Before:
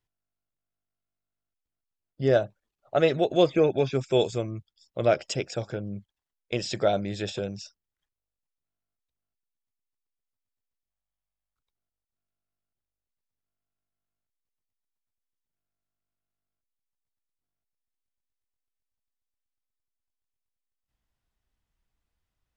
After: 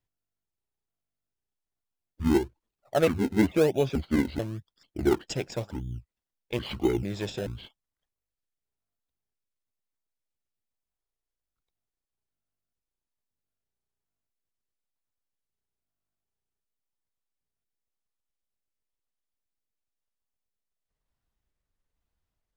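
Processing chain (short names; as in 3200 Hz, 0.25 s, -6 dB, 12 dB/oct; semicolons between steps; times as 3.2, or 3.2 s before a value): trilling pitch shifter -9 st, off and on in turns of 0.439 s; in parallel at -7 dB: decimation with a swept rate 26×, swing 100% 0.98 Hz; on the sum: gain -3.5 dB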